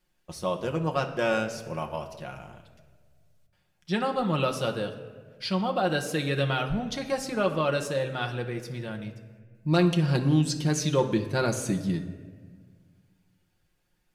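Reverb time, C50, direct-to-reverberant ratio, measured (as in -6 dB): 1.6 s, 10.0 dB, 2.0 dB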